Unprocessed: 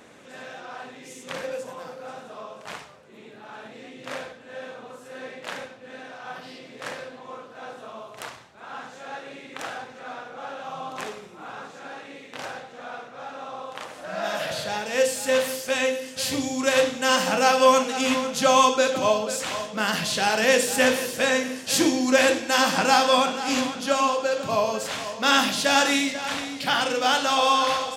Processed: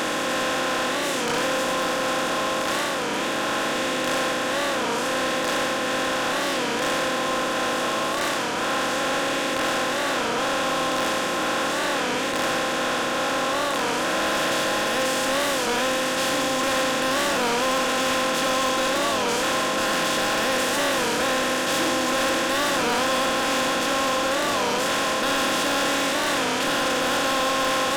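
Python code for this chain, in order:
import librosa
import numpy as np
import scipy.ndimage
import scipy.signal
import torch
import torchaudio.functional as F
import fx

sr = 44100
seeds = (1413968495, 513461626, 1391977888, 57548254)

y = fx.bin_compress(x, sr, power=0.2)
y = fx.peak_eq(y, sr, hz=730.0, db=-4.0, octaves=0.66)
y = 10.0 ** (-11.5 / 20.0) * np.tanh(y / 10.0 ** (-11.5 / 20.0))
y = fx.record_warp(y, sr, rpm=33.33, depth_cents=160.0)
y = y * 10.0 ** (-7.0 / 20.0)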